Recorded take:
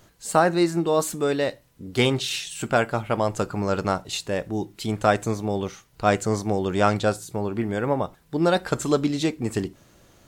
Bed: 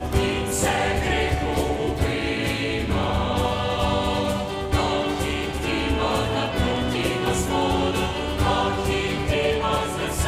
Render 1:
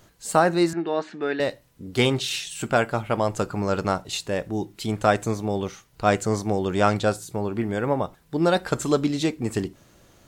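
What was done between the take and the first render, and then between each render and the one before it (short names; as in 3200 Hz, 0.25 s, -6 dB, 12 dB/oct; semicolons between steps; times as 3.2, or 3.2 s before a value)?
0.73–1.4 speaker cabinet 280–3700 Hz, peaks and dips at 520 Hz -9 dB, 1100 Hz -7 dB, 1700 Hz +8 dB, 3300 Hz -5 dB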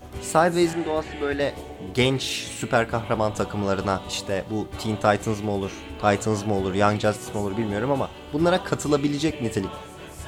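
add bed -14.5 dB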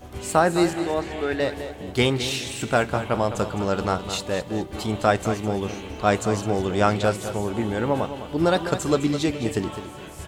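feedback echo 0.209 s, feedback 34%, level -11 dB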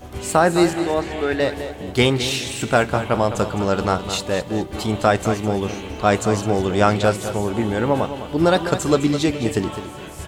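gain +4 dB; limiter -3 dBFS, peak gain reduction 2.5 dB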